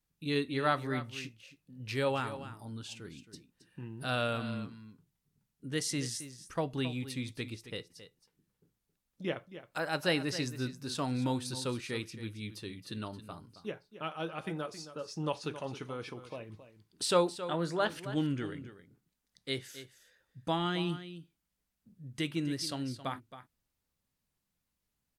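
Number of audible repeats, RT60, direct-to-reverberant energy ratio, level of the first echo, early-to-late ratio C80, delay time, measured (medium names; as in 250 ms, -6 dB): 1, no reverb, no reverb, -13.0 dB, no reverb, 270 ms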